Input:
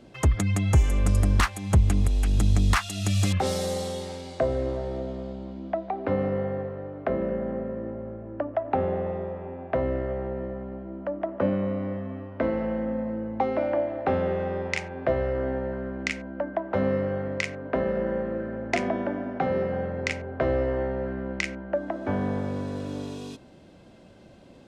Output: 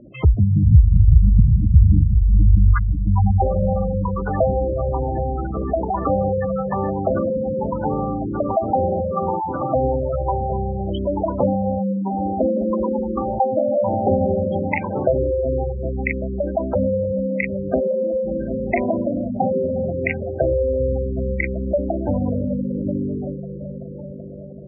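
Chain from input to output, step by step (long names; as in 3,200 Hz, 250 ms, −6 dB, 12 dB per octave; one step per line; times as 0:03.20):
echo whose low-pass opens from repeat to repeat 383 ms, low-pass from 200 Hz, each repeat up 1 octave, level −6 dB
delay with pitch and tempo change per echo 225 ms, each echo +7 semitones, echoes 3, each echo −6 dB
gate on every frequency bin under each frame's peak −10 dB strong
level +7 dB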